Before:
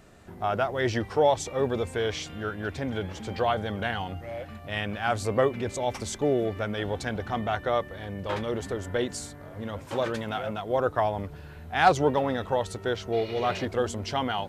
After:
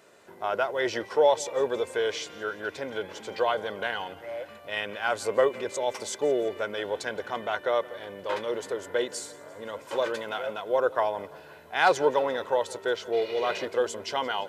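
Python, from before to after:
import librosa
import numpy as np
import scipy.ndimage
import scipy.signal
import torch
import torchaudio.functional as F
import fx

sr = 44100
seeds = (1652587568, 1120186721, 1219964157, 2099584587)

y = scipy.signal.sosfilt(scipy.signal.butter(2, 330.0, 'highpass', fs=sr, output='sos'), x)
y = y + 0.38 * np.pad(y, (int(2.0 * sr / 1000.0), 0))[:len(y)]
y = fx.echo_feedback(y, sr, ms=171, feedback_pct=54, wet_db=-21)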